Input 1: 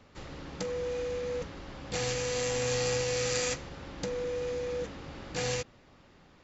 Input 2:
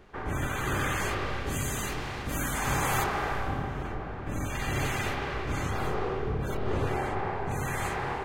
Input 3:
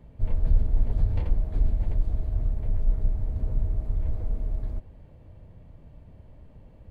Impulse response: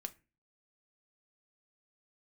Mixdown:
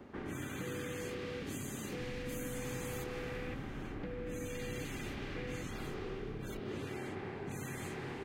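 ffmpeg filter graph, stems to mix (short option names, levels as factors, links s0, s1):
-filter_complex "[0:a]lowpass=f=2200:w=0.5412,lowpass=f=2200:w=1.3066,volume=0.708[s0];[1:a]highpass=f=85:w=0.5412,highpass=f=85:w=1.3066,volume=0.531[s1];[2:a]asoftclip=type=hard:threshold=0.0422,adelay=1800,volume=0.376[s2];[s0][s1][s2]amix=inputs=3:normalize=0,equalizer=f=270:t=o:w=1.9:g=10.5,acrossover=split=460|1800[s3][s4][s5];[s3]acompressor=threshold=0.00794:ratio=4[s6];[s4]acompressor=threshold=0.00141:ratio=4[s7];[s5]acompressor=threshold=0.00447:ratio=4[s8];[s6][s7][s8]amix=inputs=3:normalize=0"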